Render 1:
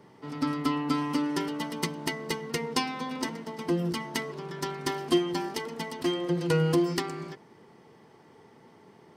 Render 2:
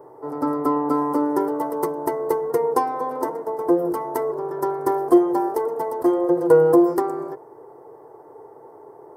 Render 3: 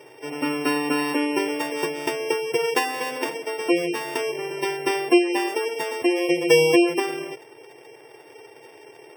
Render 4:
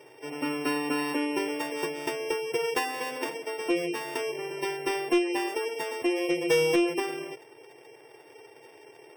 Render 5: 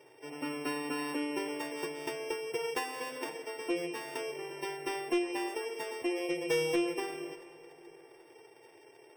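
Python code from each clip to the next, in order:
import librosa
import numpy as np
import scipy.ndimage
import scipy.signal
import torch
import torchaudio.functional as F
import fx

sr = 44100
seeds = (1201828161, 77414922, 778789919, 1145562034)

y1 = fx.curve_eq(x, sr, hz=(140.0, 210.0, 290.0, 440.0, 930.0, 1600.0, 2700.0, 3800.0, 6200.0, 13000.0), db=(0, -17, 6, 15, 12, 0, -22, -19, -10, 9))
y2 = np.r_[np.sort(y1[:len(y1) // 16 * 16].reshape(-1, 16), axis=1).ravel(), y1[len(y1) // 16 * 16:]]
y2 = fx.spec_gate(y2, sr, threshold_db=-25, keep='strong')
y2 = y2 * librosa.db_to_amplitude(-2.0)
y3 = 10.0 ** (-11.5 / 20.0) * np.tanh(y2 / 10.0 ** (-11.5 / 20.0))
y3 = y3 * librosa.db_to_amplitude(-5.0)
y4 = fx.rev_plate(y3, sr, seeds[0], rt60_s=3.7, hf_ratio=0.6, predelay_ms=0, drr_db=12.0)
y4 = y4 * librosa.db_to_amplitude(-6.5)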